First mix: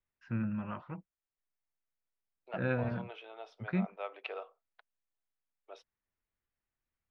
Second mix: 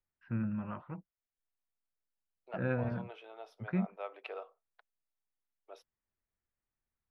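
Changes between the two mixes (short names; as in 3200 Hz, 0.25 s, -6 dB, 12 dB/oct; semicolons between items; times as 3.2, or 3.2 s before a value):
second voice: remove LPF 3400 Hz 24 dB/oct; master: add air absorption 350 m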